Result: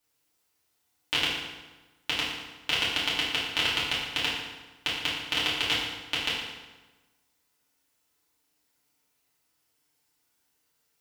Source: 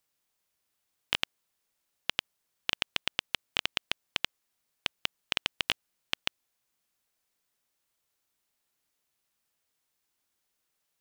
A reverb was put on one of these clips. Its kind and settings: FDN reverb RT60 1.2 s, low-frequency decay 1.1×, high-frequency decay 0.8×, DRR -9 dB; gain -3 dB

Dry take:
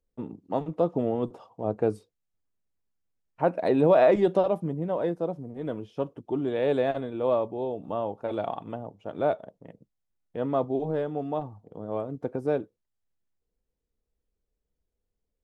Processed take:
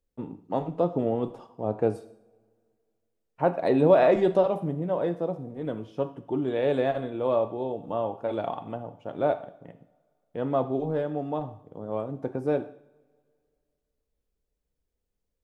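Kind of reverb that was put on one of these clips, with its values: two-slope reverb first 0.59 s, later 2.3 s, from -24 dB, DRR 8.5 dB

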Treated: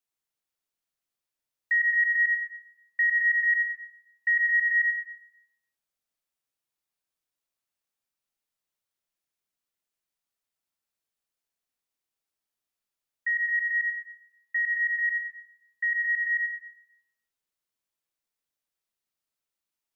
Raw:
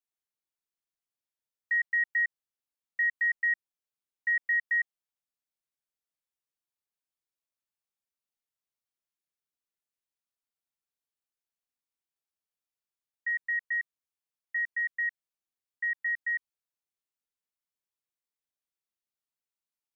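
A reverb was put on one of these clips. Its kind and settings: digital reverb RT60 0.77 s, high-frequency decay 0.9×, pre-delay 70 ms, DRR 5.5 dB; gain +3.5 dB

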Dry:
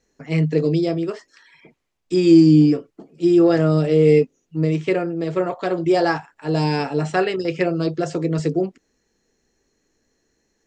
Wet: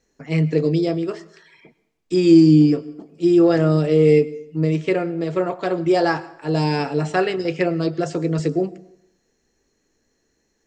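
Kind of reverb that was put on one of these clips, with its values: plate-style reverb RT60 0.79 s, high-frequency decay 0.85×, pre-delay 90 ms, DRR 19 dB

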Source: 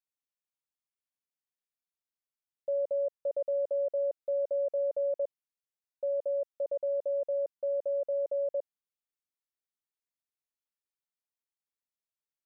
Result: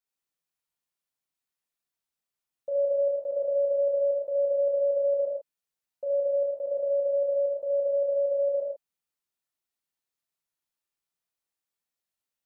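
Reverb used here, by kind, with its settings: non-linear reverb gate 0.17 s flat, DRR -3.5 dB

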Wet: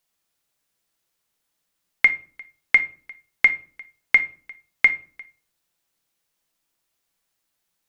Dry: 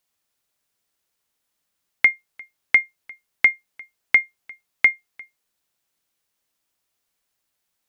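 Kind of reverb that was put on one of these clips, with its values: shoebox room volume 360 m³, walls furnished, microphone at 0.72 m

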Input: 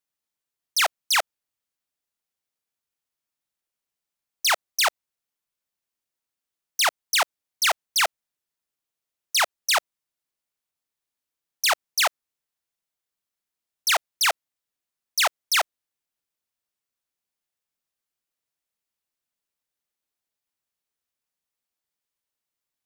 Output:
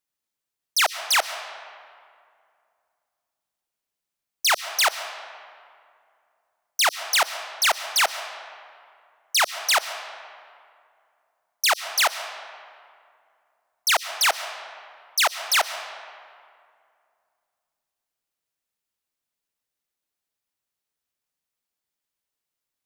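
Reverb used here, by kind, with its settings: digital reverb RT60 2.3 s, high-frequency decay 0.6×, pre-delay 85 ms, DRR 10.5 dB; gain +1 dB

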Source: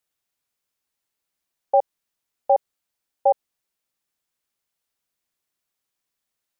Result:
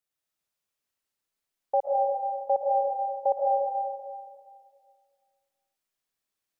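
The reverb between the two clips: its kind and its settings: digital reverb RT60 2 s, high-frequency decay 0.9×, pre-delay 95 ms, DRR -2.5 dB; gain -7.5 dB

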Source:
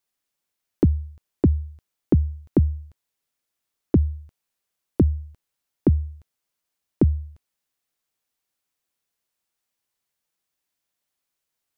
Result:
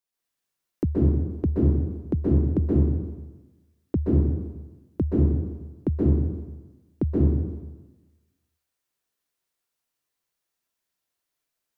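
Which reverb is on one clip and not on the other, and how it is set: plate-style reverb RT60 1.2 s, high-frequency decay 0.75×, pre-delay 0.115 s, DRR -6.5 dB; gain -7.5 dB

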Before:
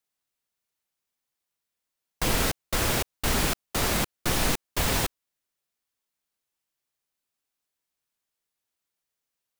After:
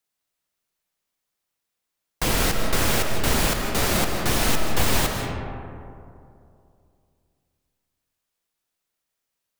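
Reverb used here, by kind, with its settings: digital reverb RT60 2.6 s, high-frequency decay 0.35×, pre-delay 0.115 s, DRR 3 dB; gain +2.5 dB

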